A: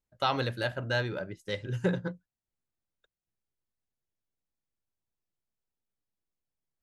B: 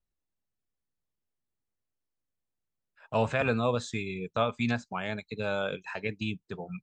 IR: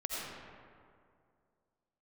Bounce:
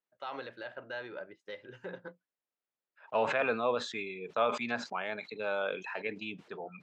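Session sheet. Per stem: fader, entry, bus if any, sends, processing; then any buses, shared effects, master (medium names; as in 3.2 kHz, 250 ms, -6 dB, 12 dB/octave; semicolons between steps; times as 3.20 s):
-5.0 dB, 0.00 s, no send, peak limiter -23.5 dBFS, peak gain reduction 8.5 dB
-1.0 dB, 0.00 s, no send, decay stretcher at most 42 dB/s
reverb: none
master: band-pass 390–2900 Hz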